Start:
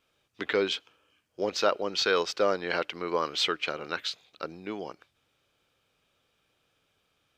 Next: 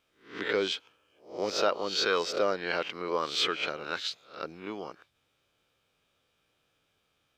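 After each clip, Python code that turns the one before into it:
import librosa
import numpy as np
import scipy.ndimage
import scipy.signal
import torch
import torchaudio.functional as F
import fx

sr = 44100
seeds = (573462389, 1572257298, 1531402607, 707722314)

y = fx.spec_swells(x, sr, rise_s=0.4)
y = F.gain(torch.from_numpy(y), -3.0).numpy()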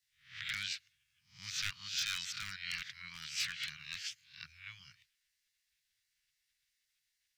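y = 10.0 ** (-19.0 / 20.0) * (np.abs((x / 10.0 ** (-19.0 / 20.0) + 3.0) % 4.0 - 2.0) - 1.0)
y = fx.spec_gate(y, sr, threshold_db=-10, keep='weak')
y = scipy.signal.sosfilt(scipy.signal.ellip(3, 1.0, 80, [130.0, 1800.0], 'bandstop', fs=sr, output='sos'), y)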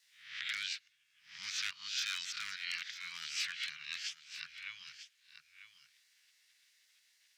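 y = fx.weighting(x, sr, curve='A')
y = y + 10.0 ** (-17.0 / 20.0) * np.pad(y, (int(945 * sr / 1000.0), 0))[:len(y)]
y = fx.band_squash(y, sr, depth_pct=40)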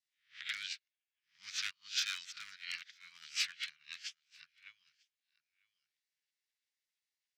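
y = fx.upward_expand(x, sr, threshold_db=-52.0, expansion=2.5)
y = F.gain(torch.from_numpy(y), 4.0).numpy()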